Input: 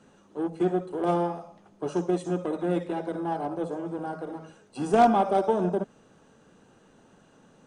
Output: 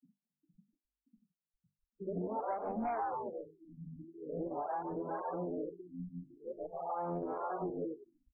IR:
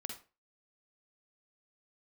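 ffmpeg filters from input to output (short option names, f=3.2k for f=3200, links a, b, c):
-filter_complex "[0:a]areverse,atempo=0.92,lowshelf=f=160:g=8,asplit=2[a][b];[b]asplit=8[c][d][e][f][g][h][i][j];[c]adelay=143,afreqshift=84,volume=-5.5dB[k];[d]adelay=286,afreqshift=168,volume=-10.4dB[l];[e]adelay=429,afreqshift=252,volume=-15.3dB[m];[f]adelay=572,afreqshift=336,volume=-20.1dB[n];[g]adelay=715,afreqshift=420,volume=-25dB[o];[h]adelay=858,afreqshift=504,volume=-29.9dB[p];[i]adelay=1001,afreqshift=588,volume=-34.8dB[q];[j]adelay=1144,afreqshift=672,volume=-39.7dB[r];[k][l][m][n][o][p][q][r]amix=inputs=8:normalize=0[s];[a][s]amix=inputs=2:normalize=0,asubboost=boost=3:cutoff=110,afftfilt=real='re*gte(hypot(re,im),0.02)':imag='im*gte(hypot(re,im),0.02)':win_size=1024:overlap=0.75,bandreject=f=50:t=h:w=6,bandreject=f=100:t=h:w=6,bandreject=f=150:t=h:w=6,bandreject=f=200:t=h:w=6,bandreject=f=250:t=h:w=6,bandreject=f=300:t=h:w=6,bandreject=f=350:t=h:w=6,bandreject=f=400:t=h:w=6,bandreject=f=450:t=h:w=6,acrossover=split=500[t][u];[t]aeval=exprs='val(0)*(1-1/2+1/2*cos(2*PI*1.8*n/s))':c=same[v];[u]aeval=exprs='val(0)*(1-1/2-1/2*cos(2*PI*1.8*n/s))':c=same[w];[v][w]amix=inputs=2:normalize=0,asplit=2[x][y];[y]highpass=f=720:p=1,volume=11dB,asoftclip=type=tanh:threshold=-12.5dB[z];[x][z]amix=inputs=2:normalize=0,lowpass=f=4.3k:p=1,volume=-6dB,acompressor=threshold=-37dB:ratio=5,afftfilt=real='re*lt(b*sr/1024,280*pow(2700/280,0.5+0.5*sin(2*PI*0.45*pts/sr)))':imag='im*lt(b*sr/1024,280*pow(2700/280,0.5+0.5*sin(2*PI*0.45*pts/sr)))':win_size=1024:overlap=0.75,volume=1dB"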